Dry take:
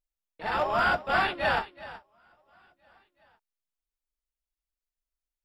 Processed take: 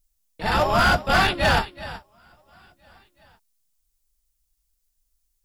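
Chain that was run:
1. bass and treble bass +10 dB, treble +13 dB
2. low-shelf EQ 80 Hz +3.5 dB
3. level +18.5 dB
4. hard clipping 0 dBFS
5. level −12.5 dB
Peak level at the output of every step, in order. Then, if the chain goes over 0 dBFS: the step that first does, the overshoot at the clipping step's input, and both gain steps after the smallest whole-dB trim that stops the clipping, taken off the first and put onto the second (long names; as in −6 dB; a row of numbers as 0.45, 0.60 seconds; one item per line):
−12.0, −11.5, +7.0, 0.0, −12.5 dBFS
step 3, 7.0 dB
step 3 +11.5 dB, step 5 −5.5 dB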